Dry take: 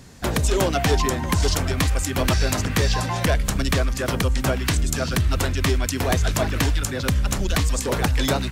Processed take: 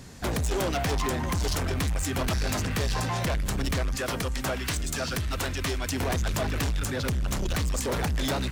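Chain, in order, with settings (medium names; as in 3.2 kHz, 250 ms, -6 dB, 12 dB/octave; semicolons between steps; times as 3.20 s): 3.96–5.88 s: bass shelf 370 Hz -7.5 dB; saturation -24 dBFS, distortion -9 dB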